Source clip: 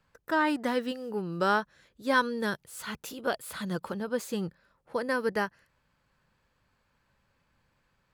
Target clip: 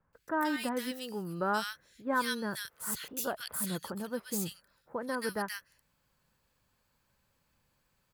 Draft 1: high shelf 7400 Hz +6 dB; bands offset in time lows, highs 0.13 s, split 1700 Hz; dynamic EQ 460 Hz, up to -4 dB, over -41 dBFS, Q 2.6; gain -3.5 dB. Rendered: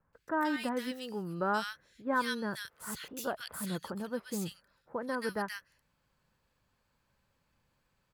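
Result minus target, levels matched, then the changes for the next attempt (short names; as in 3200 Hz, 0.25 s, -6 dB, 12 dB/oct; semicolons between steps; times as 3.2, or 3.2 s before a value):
8000 Hz band -5.5 dB
change: high shelf 7400 Hz +16.5 dB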